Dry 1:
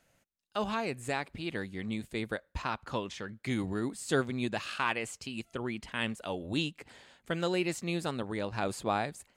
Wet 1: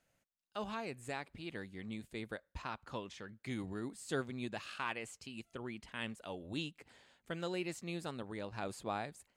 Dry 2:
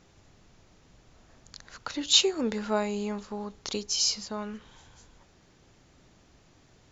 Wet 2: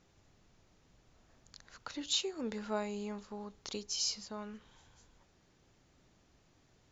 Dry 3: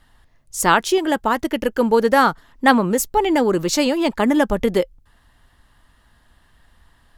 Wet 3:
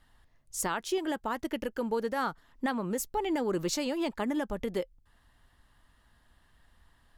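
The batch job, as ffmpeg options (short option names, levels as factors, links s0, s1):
-af "alimiter=limit=0.237:level=0:latency=1:release=367,volume=0.376"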